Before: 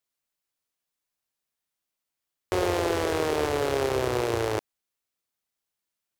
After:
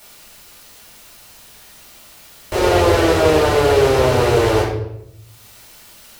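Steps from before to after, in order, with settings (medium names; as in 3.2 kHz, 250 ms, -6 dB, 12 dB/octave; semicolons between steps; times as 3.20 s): in parallel at +3 dB: peak limiter -22.5 dBFS, peak gain reduction 10 dB; on the sum: upward compressor, threshold -26 dBFS; reverberation RT60 0.80 s, pre-delay 3 ms, DRR -13 dB; trim -11 dB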